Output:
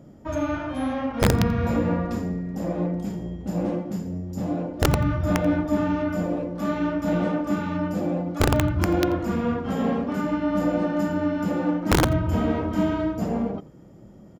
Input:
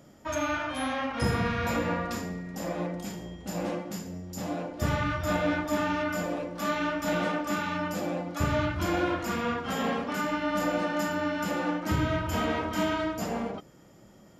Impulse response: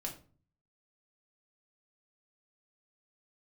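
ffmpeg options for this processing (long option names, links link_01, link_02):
-af "tiltshelf=frequency=800:gain=8.5,aeval=exprs='(mod(3.98*val(0)+1,2)-1)/3.98':channel_layout=same,aecho=1:1:86:0.0944,volume=1dB"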